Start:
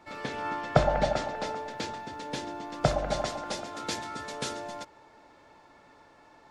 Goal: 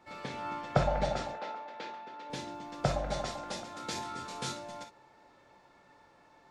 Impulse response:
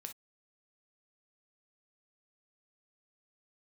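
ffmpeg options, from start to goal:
-filter_complex "[0:a]asettb=1/sr,asplit=3[s0][s1][s2];[s0]atrim=end=1.334[s3];[s1]atrim=start=1.33:end=2.3,asetpts=PTS-STARTPTS,afade=t=in:d=0.004:c=qsin,afade=t=out:st=0.966:d=0.004:c=qsin,highpass=390,lowpass=3200[s4];[s2]atrim=start=2.296[s5];[s3][s4]acrossfade=d=0.004:c1=hsin:c2=qsin[s6];[s6][s5]acrossfade=d=0.004:c1=qsin:c2=hsin,asettb=1/sr,asplit=3[s7][s8][s9];[s7]atrim=end=3.934[s10];[s8]atrim=start=3.93:end=4.52,asetpts=PTS-STARTPTS,afade=t=in:d=0.004:c=qsin,afade=t=out:st=0.586:d=0.004:c=qsin,asplit=2[s11][s12];[s12]adelay=23,volume=0.708[s13];[s11][s13]amix=inputs=2:normalize=0,atrim=end_sample=26019[s14];[s9]atrim=start=4.516[s15];[s10][s14]acrossfade=d=0.004:c1=hsin:c2=qsin[s16];[s16][s15]acrossfade=d=0.004:c1=qsin:c2=hsin[s17];[1:a]atrim=start_sample=2205[s18];[s17][s18]afir=irnorm=-1:irlink=0"

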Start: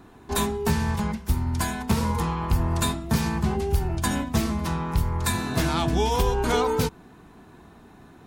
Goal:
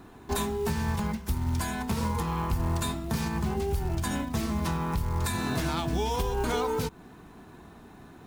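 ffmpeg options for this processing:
-af "acrusher=bits=6:mode=log:mix=0:aa=0.000001,alimiter=limit=0.106:level=0:latency=1:release=201"

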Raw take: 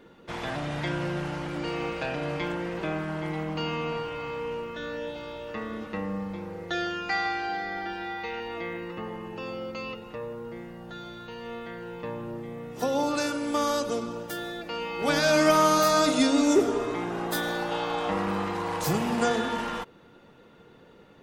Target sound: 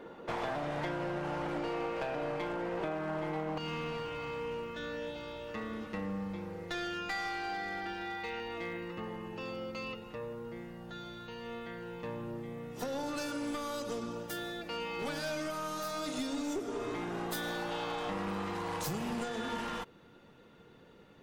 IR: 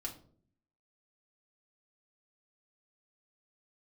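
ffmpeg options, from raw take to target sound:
-af "asetnsamples=n=441:p=0,asendcmd='3.58 equalizer g -2.5',equalizer=f=690:t=o:w=2.7:g=11,acompressor=threshold=0.0398:ratio=20,aeval=exprs='clip(val(0),-1,0.0299)':c=same,volume=0.708"

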